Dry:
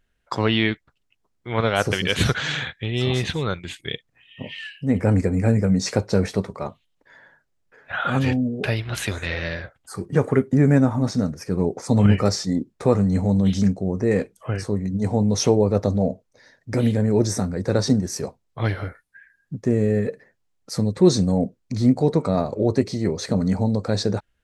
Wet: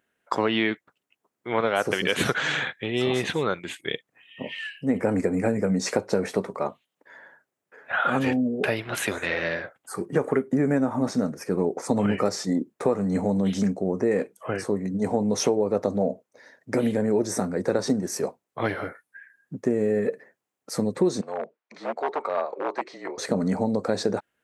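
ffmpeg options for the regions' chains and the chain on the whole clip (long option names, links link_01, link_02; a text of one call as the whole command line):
ffmpeg -i in.wav -filter_complex "[0:a]asettb=1/sr,asplit=3[link_01][link_02][link_03];[link_01]atrim=end=21.214[link_04];[link_02]atrim=start=21.21:end=23.18,asetpts=PTS-STARTPTS,afade=type=in:duration=0.004:curve=qsin,afade=type=out:start_time=1.966:duration=0.004:curve=qsin,afreqshift=-33,aeval=exprs='0.237*(abs(mod(val(0)/0.237+3,4)-2)-1)':channel_layout=same,highpass=740,lowpass=3000[link_05];[link_03]atrim=start=23.176[link_06];[link_04][link_05]acrossfade=duration=0.004:curve1=hsin:curve2=qsin[link_07];[link_07][link_06]acrossfade=duration=0.004:curve1=qsin:curve2=hsin,highpass=260,equalizer=frequency=4500:width_type=o:width=1.4:gain=-8,acompressor=threshold=-22dB:ratio=6,volume=3.5dB" out.wav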